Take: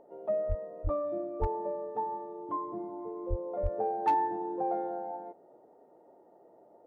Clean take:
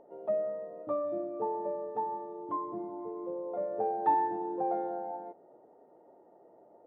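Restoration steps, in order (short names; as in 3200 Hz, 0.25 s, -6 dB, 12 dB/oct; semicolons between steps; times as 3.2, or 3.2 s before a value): clip repair -20 dBFS; de-plosive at 0.48/0.83/1.4/3.29/3.62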